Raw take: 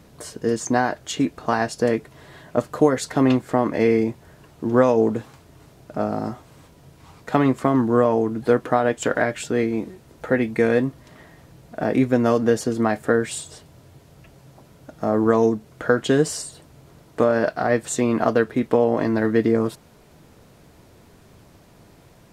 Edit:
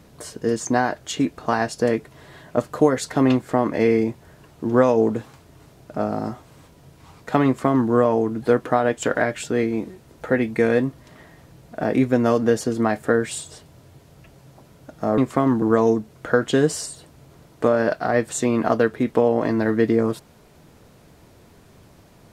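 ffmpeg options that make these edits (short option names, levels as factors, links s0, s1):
-filter_complex "[0:a]asplit=3[s0][s1][s2];[s0]atrim=end=15.182[s3];[s1]atrim=start=7.458:end=7.902[s4];[s2]atrim=start=15.178[s5];[s3][s4]acrossfade=d=0.004:c1=hsin:c2=hsin[s6];[s6][s5]acrossfade=d=0.004:c1=hsin:c2=hsin"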